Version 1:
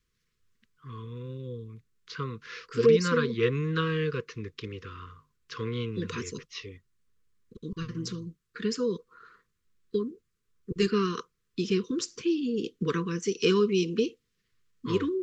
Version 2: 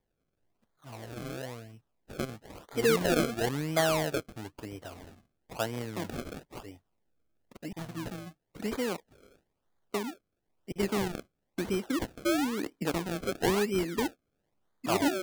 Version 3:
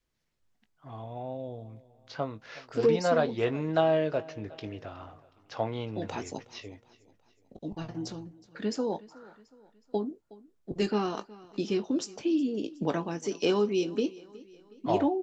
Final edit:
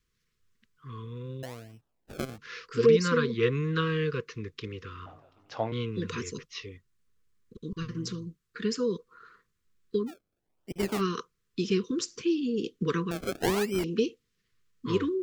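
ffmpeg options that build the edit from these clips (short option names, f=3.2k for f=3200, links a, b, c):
-filter_complex "[1:a]asplit=3[a][b][c];[0:a]asplit=5[d][e][f][g][h];[d]atrim=end=1.432[i];[a]atrim=start=1.428:end=2.382[j];[e]atrim=start=2.378:end=5.062[k];[2:a]atrim=start=5.058:end=5.722[l];[f]atrim=start=5.718:end=10.12[m];[b]atrim=start=10.06:end=11.02[n];[g]atrim=start=10.96:end=13.112[o];[c]atrim=start=13.108:end=13.842[p];[h]atrim=start=13.838[q];[i][j]acrossfade=d=0.004:c1=hsin:c2=hsin[r];[r][k]acrossfade=d=0.004:c1=hsin:c2=hsin[s];[s][l]acrossfade=d=0.004:c1=hsin:c2=hsin[t];[t][m]acrossfade=d=0.004:c1=hsin:c2=hsin[u];[u][n]acrossfade=d=0.06:c1=tri:c2=tri[v];[v][o]acrossfade=d=0.06:c1=tri:c2=tri[w];[w][p]acrossfade=d=0.004:c1=hsin:c2=hsin[x];[x][q]acrossfade=d=0.004:c1=hsin:c2=hsin"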